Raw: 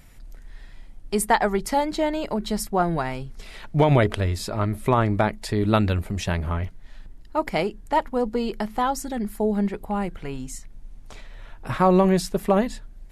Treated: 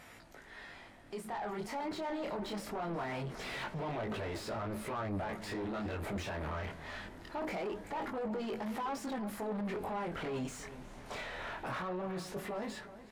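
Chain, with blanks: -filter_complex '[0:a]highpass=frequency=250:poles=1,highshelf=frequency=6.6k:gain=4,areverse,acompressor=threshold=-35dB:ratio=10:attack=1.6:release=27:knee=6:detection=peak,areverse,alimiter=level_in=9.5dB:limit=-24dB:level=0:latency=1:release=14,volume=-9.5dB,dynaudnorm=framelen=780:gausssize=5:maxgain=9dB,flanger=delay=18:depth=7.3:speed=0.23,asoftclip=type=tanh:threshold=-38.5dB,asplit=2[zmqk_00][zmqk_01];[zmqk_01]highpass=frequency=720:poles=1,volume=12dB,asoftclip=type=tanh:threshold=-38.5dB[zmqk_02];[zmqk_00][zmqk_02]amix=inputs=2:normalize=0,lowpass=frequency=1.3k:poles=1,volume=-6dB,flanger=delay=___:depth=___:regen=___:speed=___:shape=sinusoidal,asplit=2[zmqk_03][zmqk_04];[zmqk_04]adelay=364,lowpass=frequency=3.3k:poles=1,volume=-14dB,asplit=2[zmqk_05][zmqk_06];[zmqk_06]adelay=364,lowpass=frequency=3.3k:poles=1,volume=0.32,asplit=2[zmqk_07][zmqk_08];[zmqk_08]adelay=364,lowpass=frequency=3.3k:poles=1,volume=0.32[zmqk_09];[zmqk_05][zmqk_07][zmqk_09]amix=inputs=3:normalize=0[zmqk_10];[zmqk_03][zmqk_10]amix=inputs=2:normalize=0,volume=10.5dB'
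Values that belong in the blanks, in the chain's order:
8.5, 7.7, 81, 1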